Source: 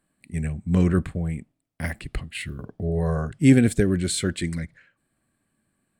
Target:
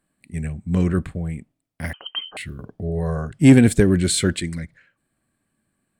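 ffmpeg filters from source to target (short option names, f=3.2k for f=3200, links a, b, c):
-filter_complex "[0:a]asettb=1/sr,asplit=3[a][b][c];[a]atrim=end=1.934[d];[b]atrim=start=1.93:end=2.37,asetpts=PTS-STARTPTS,afade=t=in:d=0.004:c=qsin,afade=t=out:st=0.436:d=0.004:c=qsin,lowpass=f=2.7k:t=q:w=0.5098,lowpass=f=2.7k:t=q:w=0.6013,lowpass=f=2.7k:t=q:w=0.9,lowpass=f=2.7k:t=q:w=2.563,afreqshift=-3200[e];[c]atrim=start=2.366[f];[d][e]acrossfade=d=0.004:c1=hsin:c2=qsin[g];[g][f]acrossfade=d=0.004:c1=qsin:c2=hsin,asettb=1/sr,asplit=3[h][i][j];[h]atrim=end=3.394[k];[i]atrim=start=3.39:end=4.4,asetpts=PTS-STARTPTS,afade=t=in:d=0.004:c=qsin,afade=t=out:st=1.006:d=0.004:c=qsin,acontrast=37[l];[j]atrim=start=4.396[m];[k][l]acrossfade=d=0.004:c1=hsin:c2=qsin[n];[n][m]acrossfade=d=0.004:c1=qsin:c2=hsin"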